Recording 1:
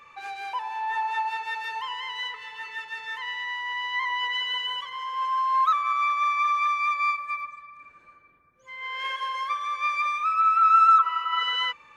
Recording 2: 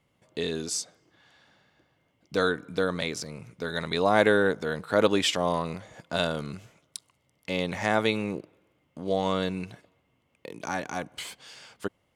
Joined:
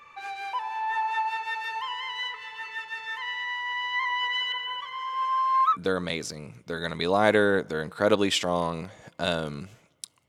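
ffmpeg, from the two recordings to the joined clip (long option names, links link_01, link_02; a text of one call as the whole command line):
ffmpeg -i cue0.wav -i cue1.wav -filter_complex "[0:a]asettb=1/sr,asplit=3[link_01][link_02][link_03];[link_01]atrim=end=4.524[link_04];[link_02]atrim=start=4.52:end=5.77,asetpts=PTS-STARTPTS,afade=type=in:duration=0.004:curve=qsin,afade=type=out:start_time=1.246:duration=0.004:curve=qsin,acrossover=split=2700[link_05][link_06];[link_06]acompressor=threshold=-46dB:ratio=4:attack=1:release=60[link_07];[link_05][link_07]amix=inputs=2:normalize=0[link_08];[link_03]atrim=start=5.766[link_09];[link_04][link_08]acrossfade=duration=0.004:curve1=hsin:curve2=qsin[link_10];[link_10][link_09]acrossfade=duration=0.004:curve1=qsin:curve2=hsin,apad=whole_dur=10.28,atrim=end=10.28,atrim=end=5.77,asetpts=PTS-STARTPTS[link_11];[1:a]atrim=start=2.63:end=7.2,asetpts=PTS-STARTPTS[link_12];[link_11][link_12]acrossfade=duration=0.06:curve1=tri:curve2=tri" out.wav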